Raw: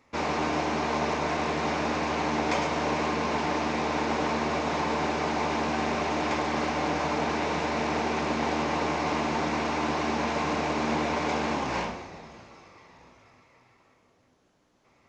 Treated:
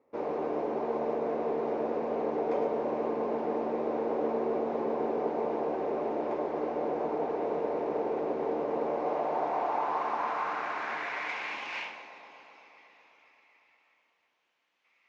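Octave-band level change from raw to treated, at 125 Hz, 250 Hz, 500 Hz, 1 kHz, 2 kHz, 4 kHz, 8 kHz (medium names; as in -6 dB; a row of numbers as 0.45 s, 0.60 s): -15.0 dB, -6.5 dB, +0.5 dB, -5.0 dB, -9.0 dB, -15.0 dB, under -20 dB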